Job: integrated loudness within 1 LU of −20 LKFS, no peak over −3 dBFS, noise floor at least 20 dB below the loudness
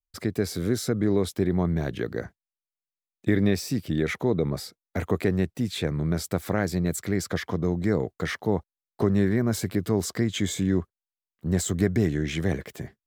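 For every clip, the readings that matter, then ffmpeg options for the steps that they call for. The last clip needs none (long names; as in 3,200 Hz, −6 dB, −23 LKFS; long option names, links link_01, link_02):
integrated loudness −26.5 LKFS; sample peak −10.5 dBFS; target loudness −20.0 LKFS
→ -af "volume=6.5dB"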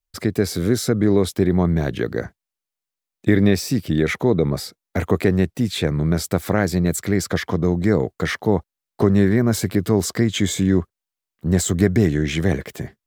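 integrated loudness −20.0 LKFS; sample peak −4.0 dBFS; background noise floor −87 dBFS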